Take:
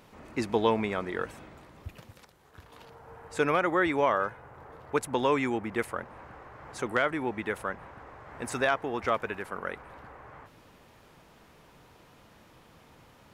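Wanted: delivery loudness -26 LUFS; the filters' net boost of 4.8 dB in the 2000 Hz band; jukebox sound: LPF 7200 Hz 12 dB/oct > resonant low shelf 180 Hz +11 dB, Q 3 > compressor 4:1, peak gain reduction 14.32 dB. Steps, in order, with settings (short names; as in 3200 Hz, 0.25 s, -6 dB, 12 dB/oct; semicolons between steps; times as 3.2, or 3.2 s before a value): LPF 7200 Hz 12 dB/oct; resonant low shelf 180 Hz +11 dB, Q 3; bell 2000 Hz +6.5 dB; compressor 4:1, threshold -35 dBFS; gain +13.5 dB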